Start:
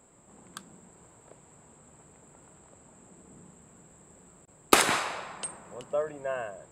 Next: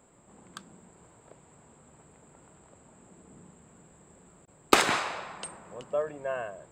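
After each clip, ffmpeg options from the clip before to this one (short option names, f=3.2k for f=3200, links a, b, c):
-af "equalizer=f=11k:t=o:w=0.56:g=-13"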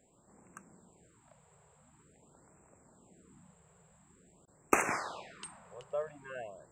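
-af "afftfilt=real='re*(1-between(b*sr/1024,250*pow(4000/250,0.5+0.5*sin(2*PI*0.47*pts/sr))/1.41,250*pow(4000/250,0.5+0.5*sin(2*PI*0.47*pts/sr))*1.41))':imag='im*(1-between(b*sr/1024,250*pow(4000/250,0.5+0.5*sin(2*PI*0.47*pts/sr))/1.41,250*pow(4000/250,0.5+0.5*sin(2*PI*0.47*pts/sr))*1.41))':win_size=1024:overlap=0.75,volume=-6.5dB"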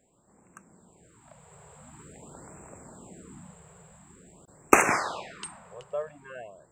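-af "dynaudnorm=f=340:g=9:m=16dB"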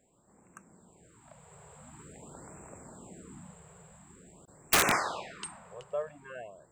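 -af "aeval=exprs='(mod(4.73*val(0)+1,2)-1)/4.73':c=same,volume=-1.5dB"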